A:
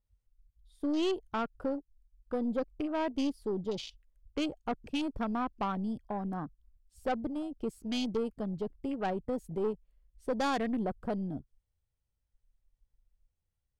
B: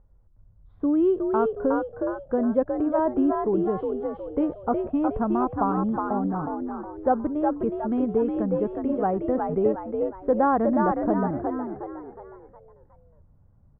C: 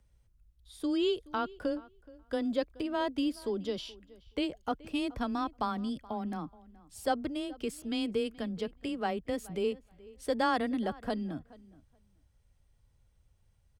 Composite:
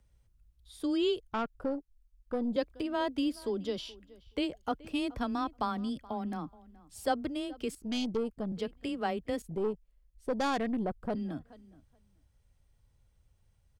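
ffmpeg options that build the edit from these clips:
-filter_complex "[0:a]asplit=3[a][b][c];[2:a]asplit=4[d][e][f][g];[d]atrim=end=1.202[h];[a]atrim=start=1.198:end=2.562[i];[e]atrim=start=2.558:end=7.752[j];[b]atrim=start=7.748:end=8.522[k];[f]atrim=start=8.518:end=9.422[l];[c]atrim=start=9.418:end=11.152[m];[g]atrim=start=11.148[n];[h][i]acrossfade=d=0.004:c1=hsin:c2=hsin[o];[o][j]acrossfade=d=0.004:c1=hsin:c2=hsin[p];[p][k]acrossfade=d=0.004:c1=hsin:c2=hsin[q];[q][l]acrossfade=d=0.004:c1=hsin:c2=hsin[r];[r][m]acrossfade=d=0.004:c1=hsin:c2=hsin[s];[s][n]acrossfade=d=0.004:c1=hsin:c2=hsin"

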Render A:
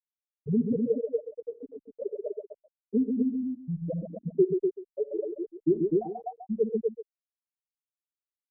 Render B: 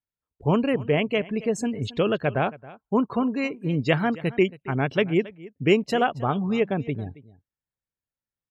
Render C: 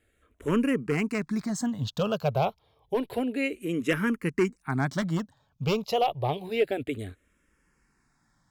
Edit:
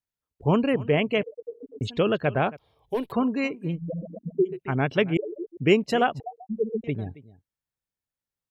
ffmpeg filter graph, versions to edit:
-filter_complex "[0:a]asplit=4[a][b][c][d];[1:a]asplit=6[e][f][g][h][i][j];[e]atrim=end=1.232[k];[a]atrim=start=1.228:end=1.812[l];[f]atrim=start=1.808:end=2.572[m];[2:a]atrim=start=2.568:end=3.122[n];[g]atrim=start=3.118:end=3.79[o];[b]atrim=start=3.63:end=4.61[p];[h]atrim=start=4.45:end=5.172[q];[c]atrim=start=5.168:end=5.572[r];[i]atrim=start=5.568:end=6.202[s];[d]atrim=start=6.198:end=6.842[t];[j]atrim=start=6.838[u];[k][l]acrossfade=d=0.004:c1=hsin:c2=hsin[v];[v][m]acrossfade=d=0.004:c1=hsin:c2=hsin[w];[w][n]acrossfade=d=0.004:c1=hsin:c2=hsin[x];[x][o]acrossfade=d=0.004:c1=hsin:c2=hsin[y];[y][p]acrossfade=d=0.16:c1=tri:c2=tri[z];[z][q]acrossfade=d=0.16:c1=tri:c2=tri[aa];[aa][r]acrossfade=d=0.004:c1=hsin:c2=hsin[ab];[ab][s]acrossfade=d=0.004:c1=hsin:c2=hsin[ac];[ac][t]acrossfade=d=0.004:c1=hsin:c2=hsin[ad];[ad][u]acrossfade=d=0.004:c1=hsin:c2=hsin"

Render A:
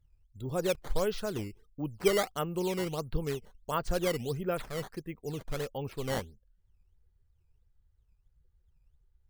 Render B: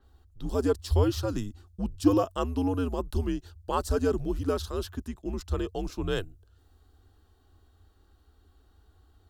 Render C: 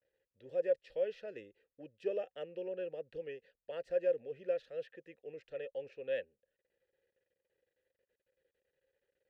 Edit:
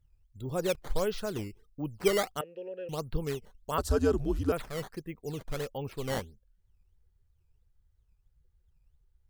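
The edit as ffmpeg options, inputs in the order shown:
-filter_complex "[0:a]asplit=3[a][b][c];[a]atrim=end=2.412[d];[2:a]atrim=start=2.408:end=2.892[e];[b]atrim=start=2.888:end=3.782[f];[1:a]atrim=start=3.778:end=4.522[g];[c]atrim=start=4.518[h];[d][e]acrossfade=d=0.004:c1=hsin:c2=hsin[i];[i][f]acrossfade=d=0.004:c1=hsin:c2=hsin[j];[j][g]acrossfade=d=0.004:c1=hsin:c2=hsin[k];[k][h]acrossfade=d=0.004:c1=hsin:c2=hsin"

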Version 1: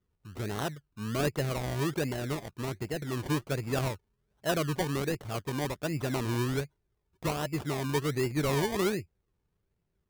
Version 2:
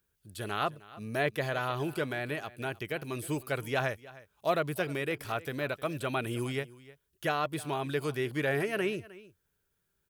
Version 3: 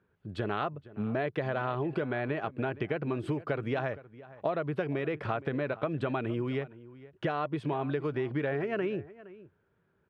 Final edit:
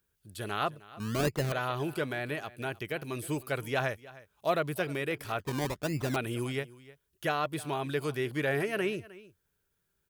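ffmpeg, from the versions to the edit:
-filter_complex "[0:a]asplit=2[a][b];[1:a]asplit=3[c][d][e];[c]atrim=end=1.002[f];[a]atrim=start=0.998:end=1.522[g];[d]atrim=start=1.518:end=5.402[h];[b]atrim=start=5.398:end=6.162[i];[e]atrim=start=6.158[j];[f][g]acrossfade=d=0.004:c1=hsin:c2=hsin[k];[k][h]acrossfade=d=0.004:c1=hsin:c2=hsin[l];[l][i]acrossfade=d=0.004:c1=hsin:c2=hsin[m];[m][j]acrossfade=d=0.004:c1=hsin:c2=hsin"

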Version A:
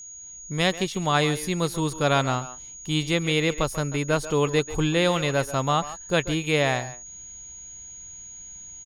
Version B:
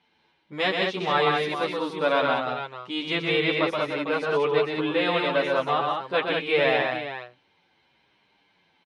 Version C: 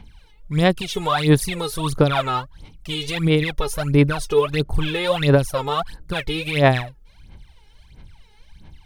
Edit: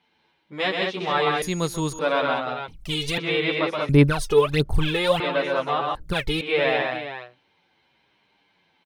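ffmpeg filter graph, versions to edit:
-filter_complex "[2:a]asplit=3[a][b][c];[1:a]asplit=5[d][e][f][g][h];[d]atrim=end=1.422[i];[0:a]atrim=start=1.418:end=1.992[j];[e]atrim=start=1.988:end=2.682[k];[a]atrim=start=2.678:end=3.182[l];[f]atrim=start=3.178:end=3.892[m];[b]atrim=start=3.888:end=5.202[n];[g]atrim=start=5.198:end=5.952[o];[c]atrim=start=5.948:end=6.412[p];[h]atrim=start=6.408[q];[i][j]acrossfade=d=0.004:c1=hsin:c2=hsin[r];[r][k]acrossfade=d=0.004:c1=hsin:c2=hsin[s];[s][l]acrossfade=d=0.004:c1=hsin:c2=hsin[t];[t][m]acrossfade=d=0.004:c1=hsin:c2=hsin[u];[u][n]acrossfade=d=0.004:c1=hsin:c2=hsin[v];[v][o]acrossfade=d=0.004:c1=hsin:c2=hsin[w];[w][p]acrossfade=d=0.004:c1=hsin:c2=hsin[x];[x][q]acrossfade=d=0.004:c1=hsin:c2=hsin"

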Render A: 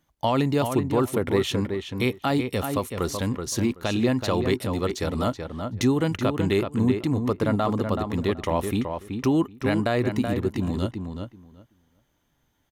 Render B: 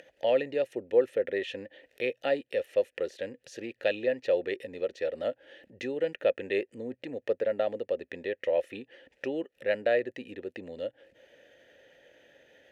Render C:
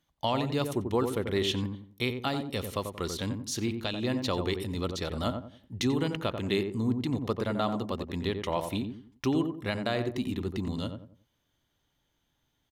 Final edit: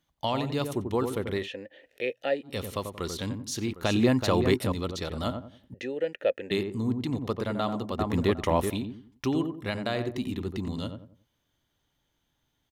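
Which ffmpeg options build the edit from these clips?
-filter_complex "[1:a]asplit=2[a][b];[0:a]asplit=2[c][d];[2:a]asplit=5[e][f][g][h][i];[e]atrim=end=1.49[j];[a]atrim=start=1.33:end=2.58[k];[f]atrim=start=2.42:end=3.732[l];[c]atrim=start=3.728:end=4.722[m];[g]atrim=start=4.718:end=5.742[n];[b]atrim=start=5.738:end=6.512[o];[h]atrim=start=6.508:end=7.992[p];[d]atrim=start=7.988:end=8.702[q];[i]atrim=start=8.698[r];[j][k]acrossfade=d=0.16:c1=tri:c2=tri[s];[s][l]acrossfade=d=0.16:c1=tri:c2=tri[t];[t][m]acrossfade=d=0.004:c1=hsin:c2=hsin[u];[u][n]acrossfade=d=0.004:c1=hsin:c2=hsin[v];[v][o]acrossfade=d=0.004:c1=hsin:c2=hsin[w];[w][p]acrossfade=d=0.004:c1=hsin:c2=hsin[x];[x][q]acrossfade=d=0.004:c1=hsin:c2=hsin[y];[y][r]acrossfade=d=0.004:c1=hsin:c2=hsin"

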